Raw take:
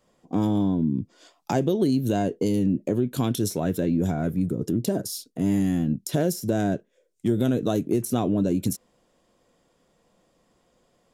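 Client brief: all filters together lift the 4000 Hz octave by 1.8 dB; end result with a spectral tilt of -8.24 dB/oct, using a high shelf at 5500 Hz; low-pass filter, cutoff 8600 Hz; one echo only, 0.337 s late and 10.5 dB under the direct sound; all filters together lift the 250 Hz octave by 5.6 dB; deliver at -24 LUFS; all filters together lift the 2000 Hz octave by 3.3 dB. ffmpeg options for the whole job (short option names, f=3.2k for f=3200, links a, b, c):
-af "lowpass=8.6k,equalizer=f=250:t=o:g=7,equalizer=f=2k:t=o:g=4.5,equalizer=f=4k:t=o:g=4.5,highshelf=f=5.5k:g=-7.5,aecho=1:1:337:0.299,volume=-3.5dB"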